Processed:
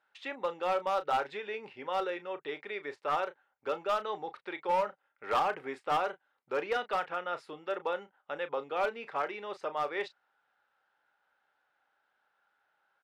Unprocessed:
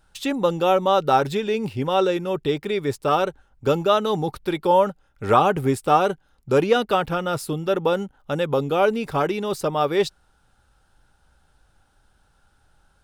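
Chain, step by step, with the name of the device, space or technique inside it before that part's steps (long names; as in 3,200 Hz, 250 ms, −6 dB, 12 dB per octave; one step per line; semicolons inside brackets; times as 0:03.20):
megaphone (band-pass filter 600–2,600 Hz; parametric band 2,000 Hz +6 dB 0.55 octaves; hard clipping −14.5 dBFS, distortion −14 dB; double-tracking delay 34 ms −12.5 dB)
level −9 dB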